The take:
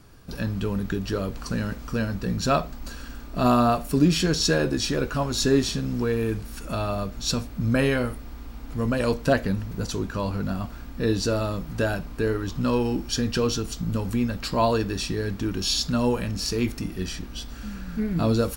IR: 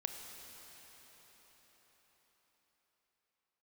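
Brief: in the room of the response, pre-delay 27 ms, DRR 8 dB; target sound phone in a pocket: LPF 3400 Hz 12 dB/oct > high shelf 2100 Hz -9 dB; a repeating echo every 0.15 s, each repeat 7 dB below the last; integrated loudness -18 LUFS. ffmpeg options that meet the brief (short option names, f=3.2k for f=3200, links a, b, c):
-filter_complex "[0:a]aecho=1:1:150|300|450|600|750:0.447|0.201|0.0905|0.0407|0.0183,asplit=2[a][b];[1:a]atrim=start_sample=2205,adelay=27[c];[b][c]afir=irnorm=-1:irlink=0,volume=-8dB[d];[a][d]amix=inputs=2:normalize=0,lowpass=3.4k,highshelf=f=2.1k:g=-9,volume=7dB"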